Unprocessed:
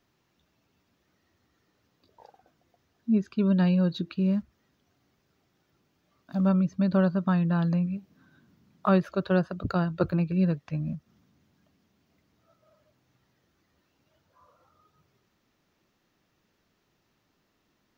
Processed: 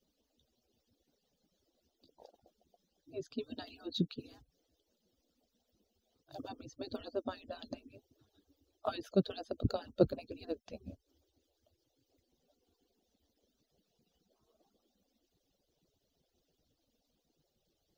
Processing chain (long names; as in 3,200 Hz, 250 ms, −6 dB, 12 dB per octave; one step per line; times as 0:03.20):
harmonic-percussive split with one part muted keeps percussive
flat-topped bell 1,500 Hz −15 dB